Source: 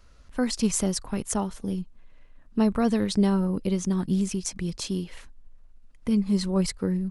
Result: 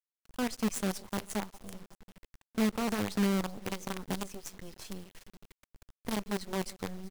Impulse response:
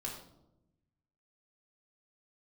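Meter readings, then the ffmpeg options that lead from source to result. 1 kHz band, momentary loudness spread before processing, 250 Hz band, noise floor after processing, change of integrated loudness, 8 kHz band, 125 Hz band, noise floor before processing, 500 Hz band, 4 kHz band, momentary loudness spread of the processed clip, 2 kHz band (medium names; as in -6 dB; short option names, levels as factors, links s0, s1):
-3.5 dB, 10 LU, -9.5 dB, under -85 dBFS, -8.0 dB, -10.0 dB, -11.0 dB, -52 dBFS, -7.5 dB, -6.0 dB, 16 LU, 0.0 dB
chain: -filter_complex "[0:a]asplit=2[s0][s1];[s1]adelay=140,highpass=300,lowpass=3400,asoftclip=type=hard:threshold=0.0841,volume=0.2[s2];[s0][s2]amix=inputs=2:normalize=0,flanger=delay=7.2:depth=3.3:regen=45:speed=0.48:shape=triangular,asplit=2[s3][s4];[s4]aecho=0:1:379:0.112[s5];[s3][s5]amix=inputs=2:normalize=0,acrusher=bits=5:dc=4:mix=0:aa=0.000001,volume=0.531"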